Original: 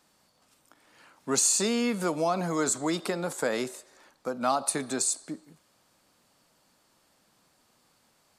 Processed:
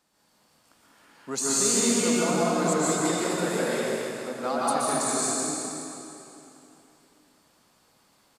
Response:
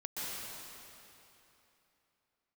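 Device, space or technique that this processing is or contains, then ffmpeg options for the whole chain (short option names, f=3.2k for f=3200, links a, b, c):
cave: -filter_complex "[0:a]aecho=1:1:201:0.398[a];[1:a]atrim=start_sample=2205[b];[a][b]afir=irnorm=-1:irlink=0"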